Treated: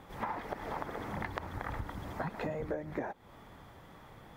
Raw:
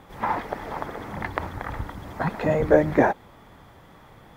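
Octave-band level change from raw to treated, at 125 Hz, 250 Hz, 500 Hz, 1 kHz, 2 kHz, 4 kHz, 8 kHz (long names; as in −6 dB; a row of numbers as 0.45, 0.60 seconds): −11.5 dB, −14.5 dB, −16.5 dB, −12.0 dB, −12.0 dB, −7.5 dB, can't be measured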